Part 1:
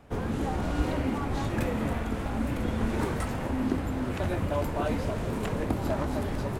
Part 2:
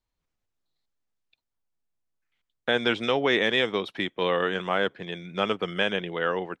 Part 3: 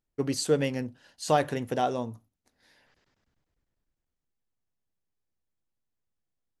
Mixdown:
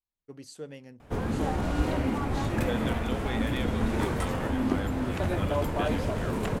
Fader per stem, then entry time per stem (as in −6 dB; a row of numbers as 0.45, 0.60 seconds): +1.0, −14.0, −16.5 decibels; 1.00, 0.00, 0.10 seconds